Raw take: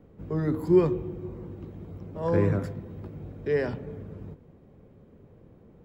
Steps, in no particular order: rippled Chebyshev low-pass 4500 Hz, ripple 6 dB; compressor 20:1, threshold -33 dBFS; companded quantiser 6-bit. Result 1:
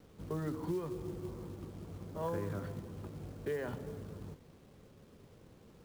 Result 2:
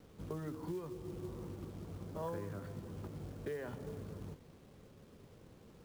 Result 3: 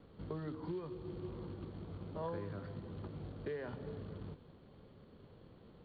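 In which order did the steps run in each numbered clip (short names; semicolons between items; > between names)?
rippled Chebyshev low-pass > compressor > companded quantiser; compressor > rippled Chebyshev low-pass > companded quantiser; compressor > companded quantiser > rippled Chebyshev low-pass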